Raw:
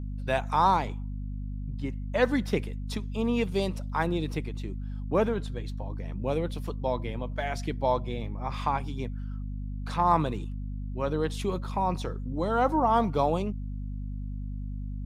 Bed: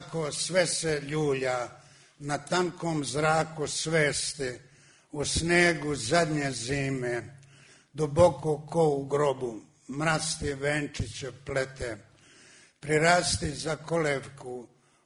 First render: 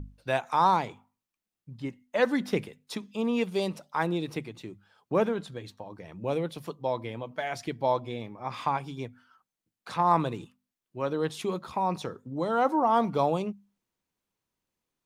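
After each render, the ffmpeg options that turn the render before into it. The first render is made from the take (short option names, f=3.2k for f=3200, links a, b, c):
-af "bandreject=f=50:t=h:w=6,bandreject=f=100:t=h:w=6,bandreject=f=150:t=h:w=6,bandreject=f=200:t=h:w=6,bandreject=f=250:t=h:w=6"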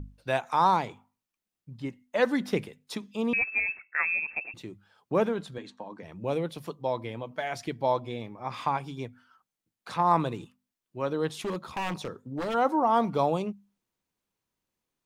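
-filter_complex "[0:a]asettb=1/sr,asplit=3[a][b][c];[a]atrim=end=3.334[d];[b]atrim=start=3.33:end=4.54,asetpts=PTS-STARTPTS,afade=t=in:d=0.004:c=qsin,afade=t=out:st=1.206:d=0.004:c=qsin,lowpass=f=2.4k:t=q:w=0.5098,lowpass=f=2.4k:t=q:w=0.6013,lowpass=f=2.4k:t=q:w=0.9,lowpass=f=2.4k:t=q:w=2.563,afreqshift=-2800[e];[c]atrim=start=4.536[f];[d][e]acrossfade=d=0.004:c1=hsin:c2=qsin[g];[g][f]acrossfade=d=0.004:c1=qsin:c2=hsin,asettb=1/sr,asplit=3[h][i][j];[h]atrim=end=5.584[k];[i]atrim=start=5.58:end=6.03,asetpts=PTS-STARTPTS,afade=t=in:d=0.004:c=qsin,afade=t=out:st=0.446:d=0.004:c=qsin,highpass=f=170:w=0.5412,highpass=f=170:w=1.3066,equalizer=f=240:t=q:w=4:g=7,equalizer=f=1k:t=q:w=4:g=5,equalizer=f=1.6k:t=q:w=4:g=5,equalizer=f=5.3k:t=q:w=4:g=-5,lowpass=f=8.2k:w=0.5412,lowpass=f=8.2k:w=1.3066[l];[j]atrim=start=6.026[m];[k][l]acrossfade=d=0.004:c1=hsin:c2=qsin[n];[n][m]acrossfade=d=0.004:c1=qsin:c2=hsin,asplit=3[o][p][q];[o]afade=t=out:st=11.42:d=0.02[r];[p]aeval=exprs='0.0501*(abs(mod(val(0)/0.0501+3,4)-2)-1)':c=same,afade=t=in:st=11.42:d=0.02,afade=t=out:st=12.53:d=0.02[s];[q]afade=t=in:st=12.53:d=0.02[t];[r][s][t]amix=inputs=3:normalize=0"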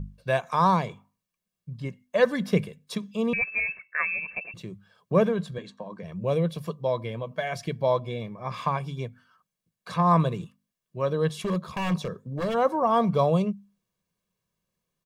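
-af "equalizer=f=180:t=o:w=0.83:g=11.5,aecho=1:1:1.8:0.6"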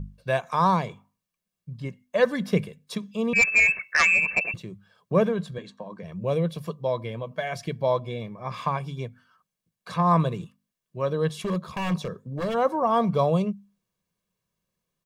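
-filter_complex "[0:a]asplit=3[a][b][c];[a]afade=t=out:st=3.35:d=0.02[d];[b]aeval=exprs='0.211*sin(PI/2*2.24*val(0)/0.211)':c=same,afade=t=in:st=3.35:d=0.02,afade=t=out:st=4.55:d=0.02[e];[c]afade=t=in:st=4.55:d=0.02[f];[d][e][f]amix=inputs=3:normalize=0"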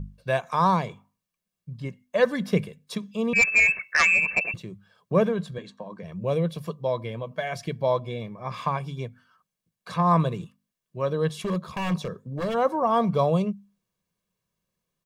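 -af anull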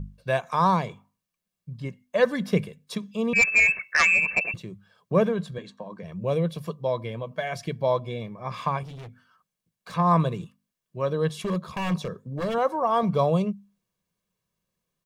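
-filter_complex "[0:a]asettb=1/sr,asplit=3[a][b][c];[a]atrim=end=8.834[d];[b]atrim=start=8.83:end=9.94,asetpts=PTS-STARTPTS,afade=t=in:d=0.004:c=qsin,afade=t=out:st=1.106:d=0.004:c=qsin,asoftclip=type=hard:threshold=-38dB[e];[c]atrim=start=9.936[f];[d][e]acrossfade=d=0.004:c1=hsin:c2=qsin[g];[g][f]acrossfade=d=0.004:c1=qsin:c2=hsin,asettb=1/sr,asplit=3[h][i][j];[h]atrim=end=12.584[k];[i]atrim=start=12.58:end=13.03,asetpts=PTS-STARTPTS,afade=t=in:d=0.004:c=qsin,afade=t=out:st=0.446:d=0.004:c=qsin,equalizer=f=200:w=0.96:g=-7[l];[j]atrim=start=13.026[m];[k][l]acrossfade=d=0.004:c1=hsin:c2=qsin[n];[n][m]acrossfade=d=0.004:c1=qsin:c2=hsin"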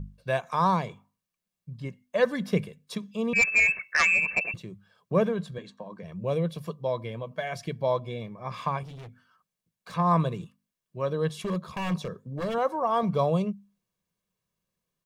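-af "volume=-2.5dB"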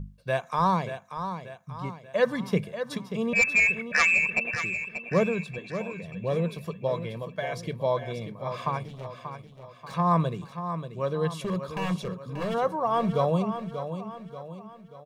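-af "aecho=1:1:585|1170|1755|2340|2925:0.335|0.154|0.0709|0.0326|0.015"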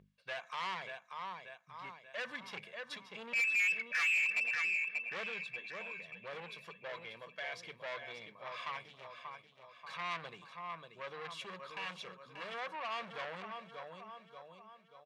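-af "asoftclip=type=tanh:threshold=-28.5dB,bandpass=f=2.4k:t=q:w=1.1:csg=0"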